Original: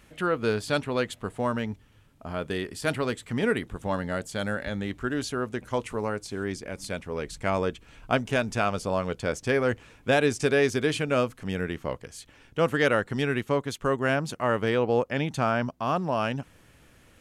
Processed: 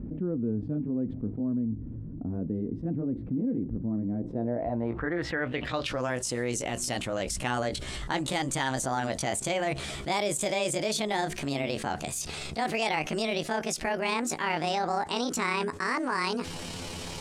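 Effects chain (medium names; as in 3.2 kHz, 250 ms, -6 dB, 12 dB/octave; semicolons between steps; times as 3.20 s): pitch bend over the whole clip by +9.5 st starting unshifted; low-pass sweep 260 Hz -> 8.2 kHz, 4.13–6.16 s; level flattener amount 70%; trim -7 dB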